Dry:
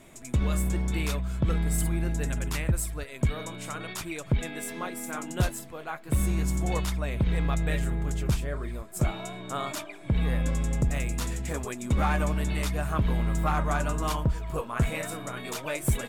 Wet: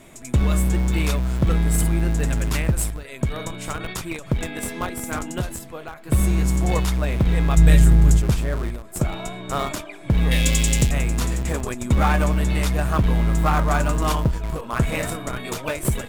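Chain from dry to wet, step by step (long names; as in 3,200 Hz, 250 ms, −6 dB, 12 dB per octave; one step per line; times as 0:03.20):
0:07.57–0:08.22: bass and treble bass +10 dB, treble +9 dB
in parallel at −9.5 dB: comparator with hysteresis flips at −28 dBFS
0:10.31–0:10.91: on the sum: high shelf with overshoot 1,900 Hz +13 dB, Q 1.5
every ending faded ahead of time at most 110 dB per second
level +5.5 dB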